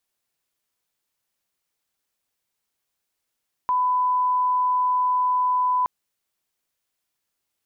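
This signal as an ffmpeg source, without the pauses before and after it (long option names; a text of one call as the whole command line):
ffmpeg -f lavfi -i "sine=frequency=1000:duration=2.17:sample_rate=44100,volume=0.06dB" out.wav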